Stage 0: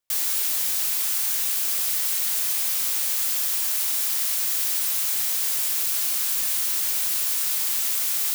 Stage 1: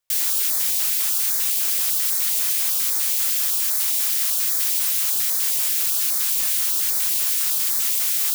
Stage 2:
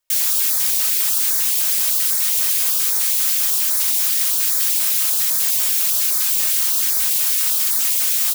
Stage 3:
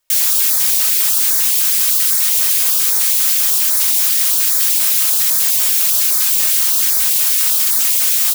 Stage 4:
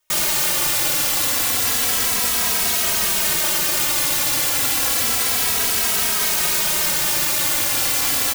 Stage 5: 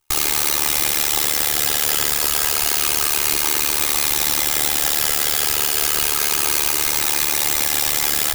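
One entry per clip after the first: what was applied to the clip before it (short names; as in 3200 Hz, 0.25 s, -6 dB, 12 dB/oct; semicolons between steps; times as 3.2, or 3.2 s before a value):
stepped notch 10 Hz 250–2800 Hz; gain +3 dB
comb 3.2 ms, depth 81%; gain +1 dB
spectral gain 1.57–2.18, 370–930 Hz -13 dB; in parallel at +2.5 dB: limiter -15.5 dBFS, peak gain reduction 10.5 dB
self-modulated delay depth 0.32 ms; soft clip -12.5 dBFS, distortion -15 dB; endless flanger 2.8 ms -0.3 Hz; gain +3 dB
minimum comb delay 2.4 ms; AM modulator 74 Hz, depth 100%; gain +6.5 dB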